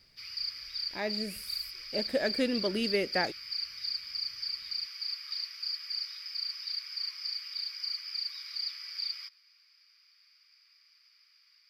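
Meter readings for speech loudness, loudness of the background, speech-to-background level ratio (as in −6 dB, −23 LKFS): −33.0 LKFS, −35.0 LKFS, 2.0 dB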